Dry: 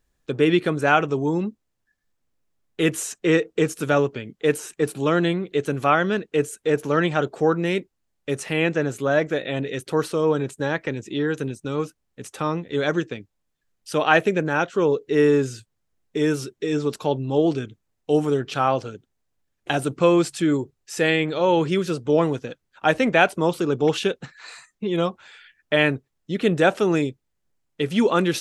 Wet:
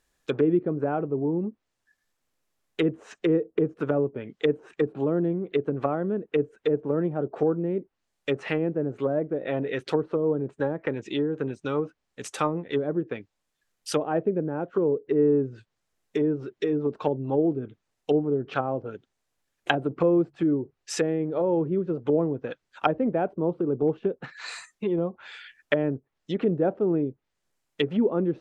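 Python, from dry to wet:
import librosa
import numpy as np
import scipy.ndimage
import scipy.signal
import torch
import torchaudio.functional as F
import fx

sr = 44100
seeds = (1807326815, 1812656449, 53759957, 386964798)

y = fx.env_lowpass_down(x, sr, base_hz=380.0, full_db=-19.0)
y = fx.low_shelf(y, sr, hz=300.0, db=-11.0)
y = y * 10.0 ** (4.0 / 20.0)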